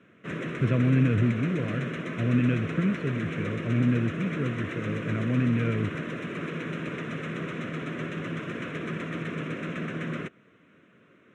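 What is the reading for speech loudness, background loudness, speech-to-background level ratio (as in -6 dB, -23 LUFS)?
-27.5 LUFS, -34.0 LUFS, 6.5 dB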